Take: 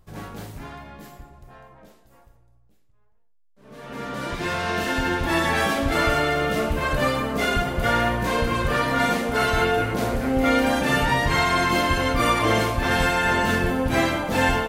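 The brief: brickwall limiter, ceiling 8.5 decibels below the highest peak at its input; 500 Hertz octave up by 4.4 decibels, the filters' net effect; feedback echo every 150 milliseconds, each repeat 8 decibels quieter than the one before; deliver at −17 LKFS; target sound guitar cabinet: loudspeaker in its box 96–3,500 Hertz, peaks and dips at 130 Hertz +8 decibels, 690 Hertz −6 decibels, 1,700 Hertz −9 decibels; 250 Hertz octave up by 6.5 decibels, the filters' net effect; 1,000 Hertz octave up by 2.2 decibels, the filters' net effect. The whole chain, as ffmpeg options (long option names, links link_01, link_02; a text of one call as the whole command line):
ffmpeg -i in.wav -af "equalizer=frequency=250:width_type=o:gain=6,equalizer=frequency=500:width_type=o:gain=4.5,equalizer=frequency=1000:width_type=o:gain=4,alimiter=limit=-12dB:level=0:latency=1,highpass=96,equalizer=frequency=130:width_type=q:width=4:gain=8,equalizer=frequency=690:width_type=q:width=4:gain=-6,equalizer=frequency=1700:width_type=q:width=4:gain=-9,lowpass=frequency=3500:width=0.5412,lowpass=frequency=3500:width=1.3066,aecho=1:1:150|300|450|600|750:0.398|0.159|0.0637|0.0255|0.0102,volume=5dB" out.wav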